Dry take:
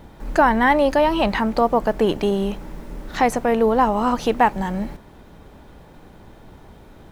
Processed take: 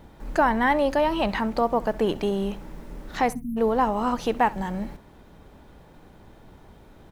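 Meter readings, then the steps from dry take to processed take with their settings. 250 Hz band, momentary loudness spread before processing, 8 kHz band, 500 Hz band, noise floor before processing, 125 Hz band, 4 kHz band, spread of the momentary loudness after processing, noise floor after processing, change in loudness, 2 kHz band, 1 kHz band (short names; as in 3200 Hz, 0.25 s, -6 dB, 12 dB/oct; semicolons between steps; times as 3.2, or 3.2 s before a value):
-5.0 dB, 13 LU, -6.0 dB, -5.5 dB, -46 dBFS, -5.0 dB, -5.0 dB, 13 LU, -51 dBFS, -5.0 dB, -5.0 dB, -5.0 dB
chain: spectral delete 3.33–3.57, 290–9400 Hz; feedback echo 66 ms, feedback 17%, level -21 dB; gain -5 dB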